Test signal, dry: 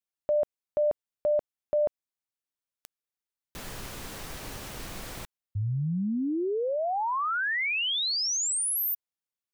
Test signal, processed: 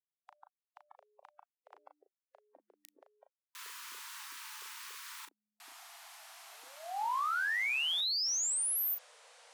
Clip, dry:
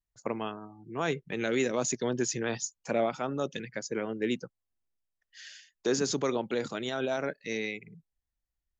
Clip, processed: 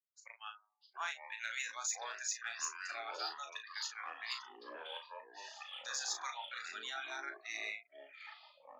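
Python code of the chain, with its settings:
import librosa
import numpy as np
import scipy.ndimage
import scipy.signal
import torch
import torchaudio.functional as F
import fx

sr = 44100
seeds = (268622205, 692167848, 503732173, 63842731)

y = scipy.signal.sosfilt(scipy.signal.butter(8, 820.0, 'highpass', fs=sr, output='sos'), x)
y = fx.noise_reduce_blind(y, sr, reduce_db=21)
y = fx.cheby_harmonics(y, sr, harmonics=(5,), levels_db=(-30,), full_scale_db=-18.5)
y = fx.echo_pitch(y, sr, ms=580, semitones=-6, count=3, db_per_echo=-6.0)
y = fx.doubler(y, sr, ms=36.0, db=-7)
y = y * 10.0 ** (-6.0 / 20.0)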